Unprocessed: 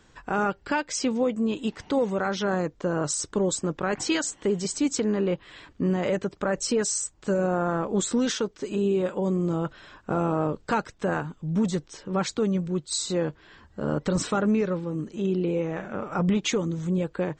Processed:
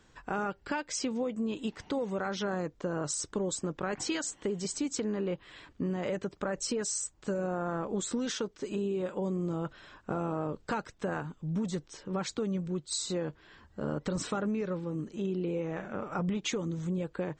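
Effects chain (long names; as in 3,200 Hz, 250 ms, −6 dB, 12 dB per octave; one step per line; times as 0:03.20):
downward compressor, threshold −24 dBFS, peak gain reduction 5.5 dB
level −4.5 dB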